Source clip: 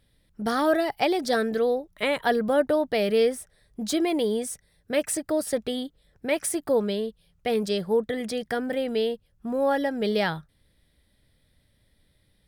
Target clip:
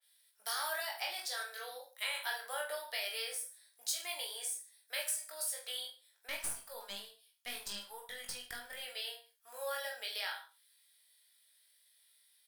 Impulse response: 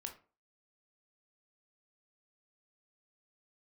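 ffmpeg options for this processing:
-filter_complex "[0:a]highpass=f=600:w=0.5412,highpass=f=600:w=1.3066,aderivative,acompressor=threshold=0.0112:ratio=4,asettb=1/sr,asplit=3[s0][s1][s2];[s0]atrim=end=6.274[s3];[s1]atrim=start=6.27:end=8.82,asetpts=PTS-STARTPTS,afade=t=in:d=0.004:c=qsin,afade=t=out:st=2.546:d=0.004:c=qsin,aeval=exprs='(tanh(31.6*val(0)+0.7)-tanh(0.7))/31.6':c=same[s4];[s2]atrim=start=8.816[s5];[s3][s4]acrossfade=d=0.004:c1=hsin:c2=qsin[s6];[s6][s5]acrossfade=d=0.004:c1=qsin:c2=hsin,aecho=1:1:20|44|72.8|107.4|148.8:0.631|0.398|0.251|0.158|0.1[s7];[1:a]atrim=start_sample=2205,atrim=end_sample=3087[s8];[s7][s8]afir=irnorm=-1:irlink=0,adynamicequalizer=threshold=0.00112:dfrequency=2800:dqfactor=0.7:tfrequency=2800:tqfactor=0.7:attack=5:release=100:ratio=0.375:range=2.5:mode=cutabove:tftype=highshelf,volume=2.51"

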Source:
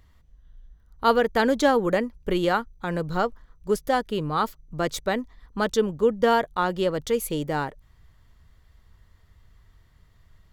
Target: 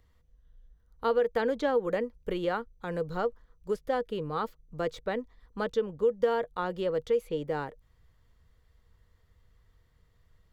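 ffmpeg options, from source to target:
-filter_complex "[0:a]equalizer=f=480:t=o:w=0.21:g=11,acrossover=split=490|4000[s0][s1][s2];[s0]acompressor=threshold=0.0794:ratio=4[s3];[s1]acompressor=threshold=0.126:ratio=4[s4];[s2]acompressor=threshold=0.00224:ratio=4[s5];[s3][s4][s5]amix=inputs=3:normalize=0,volume=0.398"

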